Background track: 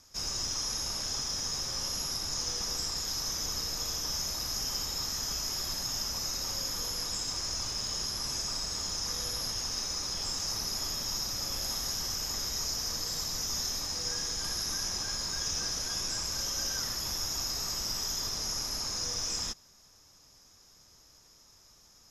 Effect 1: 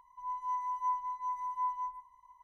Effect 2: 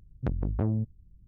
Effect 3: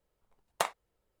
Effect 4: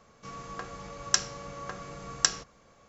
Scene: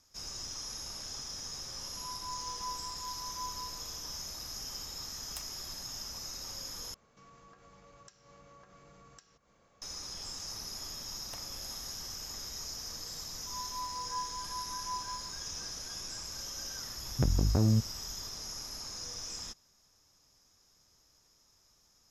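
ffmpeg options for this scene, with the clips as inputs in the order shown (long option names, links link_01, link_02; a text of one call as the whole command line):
ffmpeg -i bed.wav -i cue0.wav -i cue1.wav -i cue2.wav -i cue3.wav -filter_complex "[1:a]asplit=2[link_01][link_02];[3:a]asplit=2[link_03][link_04];[0:a]volume=-8dB[link_05];[link_01]aeval=exprs='val(0)+0.5*0.00224*sgn(val(0))':channel_layout=same[link_06];[link_03]aderivative[link_07];[4:a]acompressor=threshold=-46dB:ratio=3:attack=0.18:release=122:knee=1:detection=rms[link_08];[link_04]acompressor=threshold=-43dB:ratio=6:attack=3.2:release=140:knee=1:detection=peak[link_09];[2:a]alimiter=level_in=21dB:limit=-1dB:release=50:level=0:latency=1[link_10];[link_05]asplit=2[link_11][link_12];[link_11]atrim=end=6.944[link_13];[link_08]atrim=end=2.88,asetpts=PTS-STARTPTS,volume=-7.5dB[link_14];[link_12]atrim=start=9.816[link_15];[link_06]atrim=end=2.43,asetpts=PTS-STARTPTS,volume=-8.5dB,afade=type=in:duration=0.004:curve=hsin,afade=type=out:start_time=2.426:duration=0.004:curve=hsin,adelay=1790[link_16];[link_07]atrim=end=1.2,asetpts=PTS-STARTPTS,volume=-8.5dB,afade=type=in:duration=0.004:curve=hsin,afade=type=out:start_time=1.196:duration=0.004:curve=hsin,adelay=4760[link_17];[link_09]atrim=end=1.2,asetpts=PTS-STARTPTS,volume=-3dB,afade=type=in:duration=0.004:curve=hsin,afade=type=out:start_time=1.196:duration=0.004:curve=hsin,adelay=10730[link_18];[link_02]atrim=end=2.43,asetpts=PTS-STARTPTS,volume=-5.5dB,afade=type=in:duration=0.004:curve=hsin,afade=type=out:start_time=2.426:duration=0.004:curve=hsin,adelay=13290[link_19];[link_10]atrim=end=1.27,asetpts=PTS-STARTPTS,volume=-17.5dB,afade=type=in:duration=0.004:curve=hsin,afade=type=out:start_time=1.266:duration=0.004:curve=hsin,adelay=16960[link_20];[link_13][link_14]acrossfade=duration=0.004:curve1=hsin:curve2=hsin[link_21];[link_21][link_15]acrossfade=duration=0.004:curve1=hsin:curve2=hsin[link_22];[link_22][link_16][link_17][link_18][link_19][link_20]amix=inputs=6:normalize=0" out.wav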